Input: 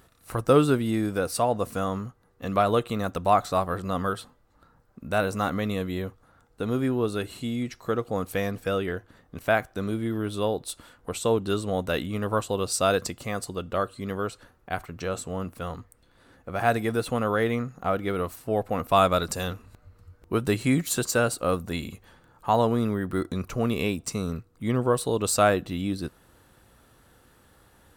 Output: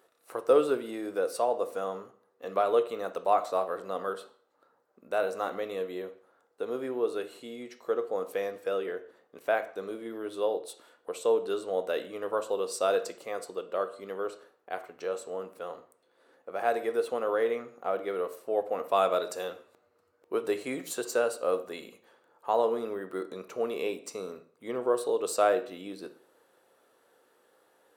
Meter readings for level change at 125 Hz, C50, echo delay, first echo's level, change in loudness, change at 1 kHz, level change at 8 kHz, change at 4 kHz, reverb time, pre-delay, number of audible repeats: below −25 dB, 13.5 dB, no echo audible, no echo audible, −4.5 dB, −5.0 dB, −9.5 dB, −8.5 dB, 0.50 s, 7 ms, no echo audible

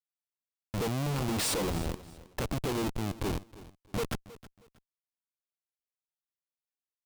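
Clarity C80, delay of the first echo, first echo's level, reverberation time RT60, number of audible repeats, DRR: no reverb audible, 317 ms, −18.0 dB, no reverb audible, 2, no reverb audible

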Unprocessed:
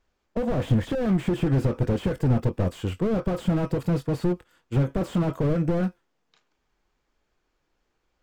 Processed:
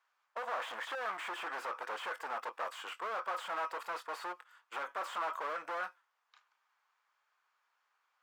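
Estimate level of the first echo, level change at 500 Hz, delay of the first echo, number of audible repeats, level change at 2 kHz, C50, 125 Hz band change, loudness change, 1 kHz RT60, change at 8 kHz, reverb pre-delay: no echo audible, −16.0 dB, no echo audible, no echo audible, +1.0 dB, no reverb audible, below −40 dB, −14.0 dB, no reverb audible, can't be measured, no reverb audible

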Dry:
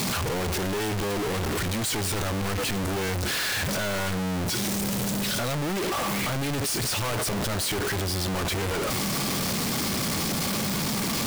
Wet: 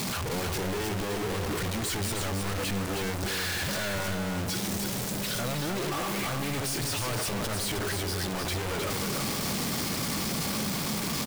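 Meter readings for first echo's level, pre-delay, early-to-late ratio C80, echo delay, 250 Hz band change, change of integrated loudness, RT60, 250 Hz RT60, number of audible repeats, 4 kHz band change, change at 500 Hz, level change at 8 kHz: −5.0 dB, no reverb audible, no reverb audible, 312 ms, −3.5 dB, −3.5 dB, no reverb audible, no reverb audible, 1, −3.5 dB, −3.5 dB, −3.5 dB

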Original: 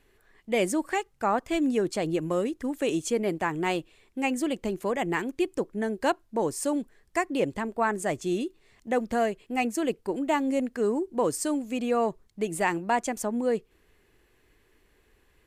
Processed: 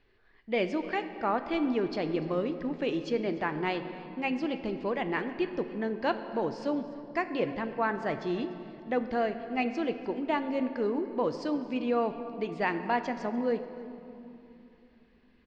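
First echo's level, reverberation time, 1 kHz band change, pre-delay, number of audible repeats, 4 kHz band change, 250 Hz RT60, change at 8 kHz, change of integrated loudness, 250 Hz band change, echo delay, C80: −19.5 dB, 3.0 s, −3.0 dB, 8 ms, 2, −3.5 dB, 4.4 s, below −20 dB, −3.0 dB, −3.0 dB, 295 ms, 10.5 dB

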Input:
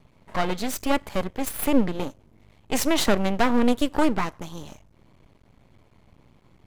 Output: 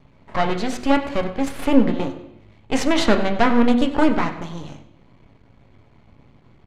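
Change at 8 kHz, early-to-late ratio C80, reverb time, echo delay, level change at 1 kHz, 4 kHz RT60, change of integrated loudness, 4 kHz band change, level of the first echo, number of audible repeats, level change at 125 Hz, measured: −4.0 dB, 11.5 dB, 0.80 s, 96 ms, +4.5 dB, 0.90 s, +4.5 dB, +2.0 dB, −15.0 dB, 1, +3.5 dB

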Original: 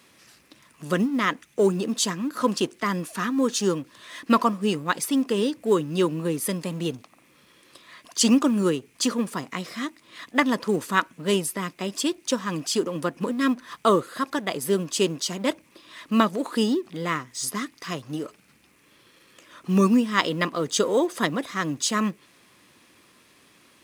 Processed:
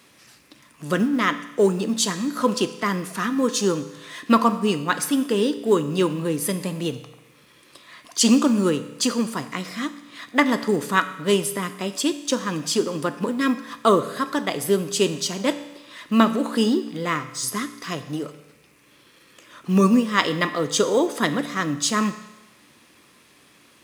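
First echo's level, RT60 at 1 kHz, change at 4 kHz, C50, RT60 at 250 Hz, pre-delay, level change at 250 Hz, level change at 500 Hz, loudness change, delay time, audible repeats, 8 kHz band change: no echo audible, 1.0 s, +2.5 dB, 12.5 dB, 1.0 s, 7 ms, +2.5 dB, +2.5 dB, +2.5 dB, no echo audible, no echo audible, +2.5 dB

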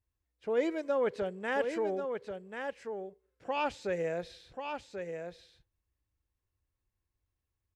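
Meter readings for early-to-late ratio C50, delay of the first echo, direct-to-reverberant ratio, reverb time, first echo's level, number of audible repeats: no reverb audible, 1,087 ms, no reverb audible, no reverb audible, −6.5 dB, 1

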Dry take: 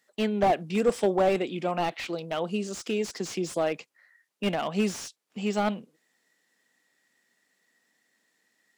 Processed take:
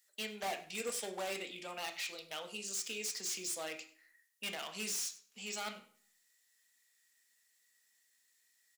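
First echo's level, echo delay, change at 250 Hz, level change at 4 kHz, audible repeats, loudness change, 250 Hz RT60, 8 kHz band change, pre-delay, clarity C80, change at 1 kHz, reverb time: −18.5 dB, 98 ms, −21.5 dB, −3.0 dB, 1, −11.0 dB, 0.55 s, +2.5 dB, 3 ms, 14.5 dB, −15.5 dB, 0.45 s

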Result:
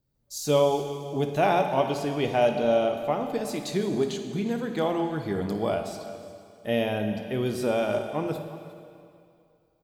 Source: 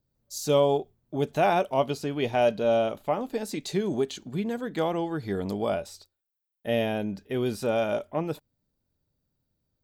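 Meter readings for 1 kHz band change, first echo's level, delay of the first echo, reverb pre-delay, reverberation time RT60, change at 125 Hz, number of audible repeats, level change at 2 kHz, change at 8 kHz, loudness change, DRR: +1.0 dB, −14.0 dB, 56 ms, 5 ms, 2.4 s, +1.5 dB, 2, +1.0 dB, +1.0 dB, +1.0 dB, 5.0 dB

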